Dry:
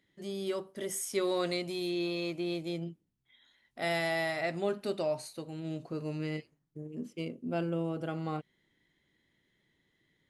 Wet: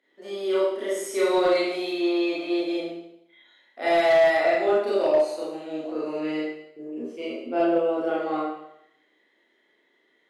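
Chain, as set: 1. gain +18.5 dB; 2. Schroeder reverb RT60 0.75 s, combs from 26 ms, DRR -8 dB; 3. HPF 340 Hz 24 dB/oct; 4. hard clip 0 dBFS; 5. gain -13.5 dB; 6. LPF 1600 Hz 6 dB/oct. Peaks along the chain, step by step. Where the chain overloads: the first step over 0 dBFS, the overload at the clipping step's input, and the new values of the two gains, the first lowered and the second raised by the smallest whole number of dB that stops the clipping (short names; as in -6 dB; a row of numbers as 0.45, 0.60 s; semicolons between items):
-1.0, +9.5, +7.5, 0.0, -13.5, -13.5 dBFS; step 2, 7.5 dB; step 1 +10.5 dB, step 5 -5.5 dB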